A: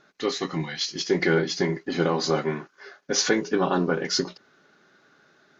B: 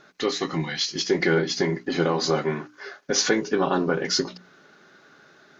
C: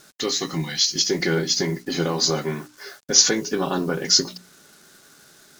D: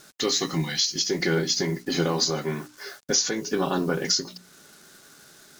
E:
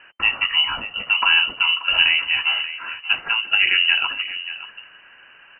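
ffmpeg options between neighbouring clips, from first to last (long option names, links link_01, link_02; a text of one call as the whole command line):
ffmpeg -i in.wav -filter_complex "[0:a]bandreject=frequency=60:width_type=h:width=6,bandreject=frequency=120:width_type=h:width=6,bandreject=frequency=180:width_type=h:width=6,bandreject=frequency=240:width_type=h:width=6,bandreject=frequency=300:width_type=h:width=6,asplit=2[link_01][link_02];[link_02]acompressor=threshold=-33dB:ratio=6,volume=2.5dB[link_03];[link_01][link_03]amix=inputs=2:normalize=0,volume=-1.5dB" out.wav
ffmpeg -i in.wav -af "acrusher=bits=8:mix=0:aa=0.5,bass=frequency=250:gain=5,treble=frequency=4000:gain=15,volume=-2.5dB" out.wav
ffmpeg -i in.wav -af "alimiter=limit=-12dB:level=0:latency=1:release=433" out.wav
ffmpeg -i in.wav -filter_complex "[0:a]asplit=2[link_01][link_02];[link_02]adelay=583.1,volume=-13dB,highshelf=frequency=4000:gain=-13.1[link_03];[link_01][link_03]amix=inputs=2:normalize=0,lowpass=frequency=2600:width_type=q:width=0.5098,lowpass=frequency=2600:width_type=q:width=0.6013,lowpass=frequency=2600:width_type=q:width=0.9,lowpass=frequency=2600:width_type=q:width=2.563,afreqshift=-3100,volume=7.5dB" out.wav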